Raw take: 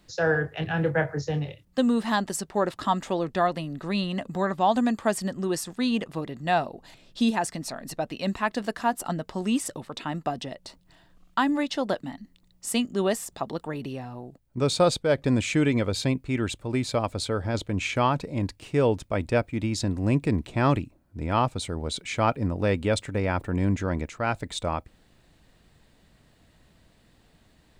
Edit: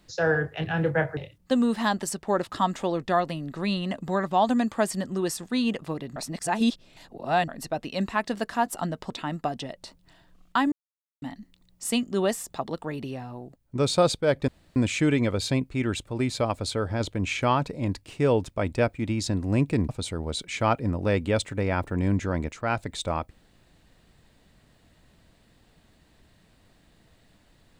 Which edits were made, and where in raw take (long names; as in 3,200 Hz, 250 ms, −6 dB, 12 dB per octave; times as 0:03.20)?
0:01.17–0:01.44: remove
0:06.43–0:07.75: reverse
0:09.37–0:09.92: remove
0:11.54–0:12.04: silence
0:15.30: splice in room tone 0.28 s
0:20.43–0:21.46: remove